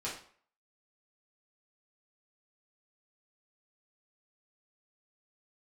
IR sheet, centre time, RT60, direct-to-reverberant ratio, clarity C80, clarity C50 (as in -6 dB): 31 ms, 0.50 s, -8.0 dB, 10.5 dB, 5.5 dB